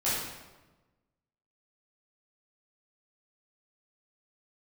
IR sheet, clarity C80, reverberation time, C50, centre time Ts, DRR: 2.0 dB, 1.2 s, -1.0 dB, 81 ms, -11.0 dB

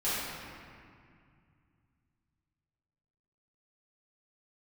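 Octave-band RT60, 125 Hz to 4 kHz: 3.7, 3.1, 2.2, 2.2, 2.2, 1.5 s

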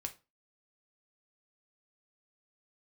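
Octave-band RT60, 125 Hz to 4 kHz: 0.35, 0.35, 0.30, 0.30, 0.25, 0.25 s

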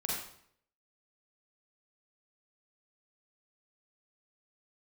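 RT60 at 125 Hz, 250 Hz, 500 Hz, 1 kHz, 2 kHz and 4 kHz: 0.75, 0.70, 0.65, 0.65, 0.60, 0.55 s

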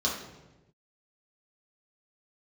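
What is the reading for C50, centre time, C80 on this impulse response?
4.0 dB, 43 ms, 7.0 dB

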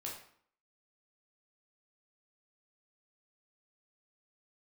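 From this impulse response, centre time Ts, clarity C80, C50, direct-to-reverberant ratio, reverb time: 35 ms, 8.5 dB, 5.0 dB, -3.0 dB, 0.60 s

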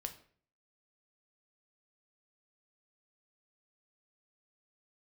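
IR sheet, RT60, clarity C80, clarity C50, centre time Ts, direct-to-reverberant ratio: 0.50 s, 16.5 dB, 12.5 dB, 10 ms, 6.0 dB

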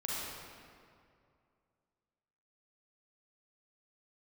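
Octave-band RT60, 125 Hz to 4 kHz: 2.7, 2.5, 2.4, 2.3, 1.9, 1.5 s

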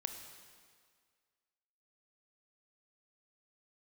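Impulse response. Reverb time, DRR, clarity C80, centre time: 1.9 s, 5.5 dB, 8.0 dB, 35 ms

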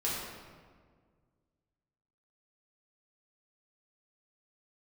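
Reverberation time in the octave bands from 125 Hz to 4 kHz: 2.4, 2.2, 1.9, 1.6, 1.3, 1.0 s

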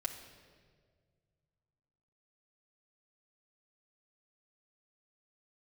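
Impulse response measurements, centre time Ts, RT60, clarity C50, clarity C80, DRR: 24 ms, 1.8 s, 8.5 dB, 10.0 dB, -1.5 dB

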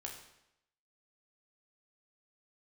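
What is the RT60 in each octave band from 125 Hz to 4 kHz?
0.80, 0.80, 0.85, 0.80, 0.80, 0.75 s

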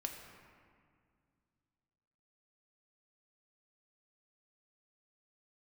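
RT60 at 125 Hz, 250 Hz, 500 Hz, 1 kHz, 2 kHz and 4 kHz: 3.2, 2.9, 2.1, 2.0, 1.8, 1.3 s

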